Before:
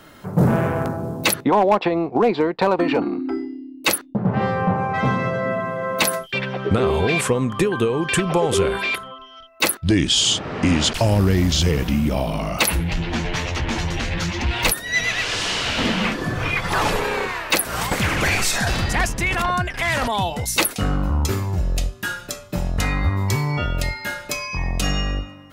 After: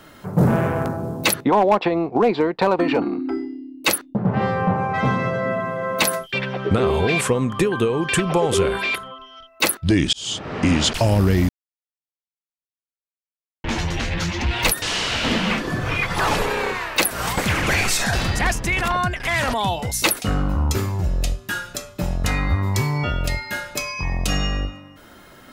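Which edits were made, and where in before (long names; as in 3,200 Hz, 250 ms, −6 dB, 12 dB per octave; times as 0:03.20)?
0:10.13–0:10.55: fade in
0:11.49–0:13.64: silence
0:14.82–0:15.36: remove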